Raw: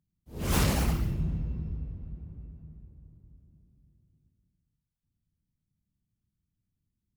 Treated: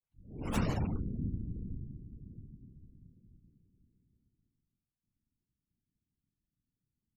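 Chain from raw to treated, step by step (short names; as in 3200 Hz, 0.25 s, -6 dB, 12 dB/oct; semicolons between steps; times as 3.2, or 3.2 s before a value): tape start at the beginning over 0.49 s; spectral gate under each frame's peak -25 dB strong; whisperiser; gain -5.5 dB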